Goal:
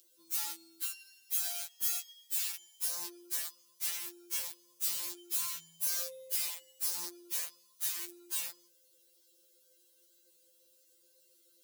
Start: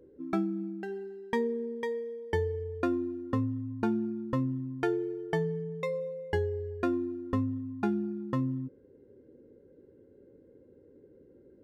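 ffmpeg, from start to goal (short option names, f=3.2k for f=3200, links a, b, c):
-filter_complex "[0:a]aexciter=amount=13.2:drive=5.6:freq=2.9k,asplit=2[a][b];[b]highpass=f=720:p=1,volume=21dB,asoftclip=type=tanh:threshold=-11.5dB[c];[a][c]amix=inputs=2:normalize=0,lowpass=f=3.5k:p=1,volume=-6dB,aeval=exprs='(mod(11.9*val(0)+1,2)-1)/11.9':c=same,aderivative,afftfilt=real='re*2.83*eq(mod(b,8),0)':imag='im*2.83*eq(mod(b,8),0)':win_size=2048:overlap=0.75,volume=-4dB"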